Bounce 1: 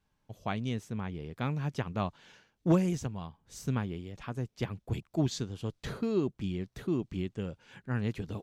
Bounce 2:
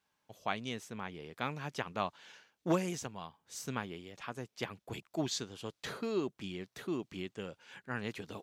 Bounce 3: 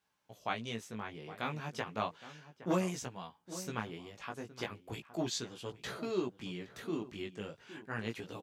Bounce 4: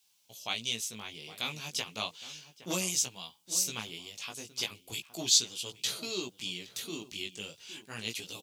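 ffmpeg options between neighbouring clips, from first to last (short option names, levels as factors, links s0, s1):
-af "highpass=f=690:p=1,volume=1.33"
-filter_complex "[0:a]flanger=delay=16:depth=3.3:speed=0.34,asplit=2[s0][s1];[s1]adelay=816.3,volume=0.2,highshelf=f=4000:g=-18.4[s2];[s0][s2]amix=inputs=2:normalize=0,volume=1.33"
-af "aexciter=amount=6.5:drive=7.4:freq=2500,volume=0.596"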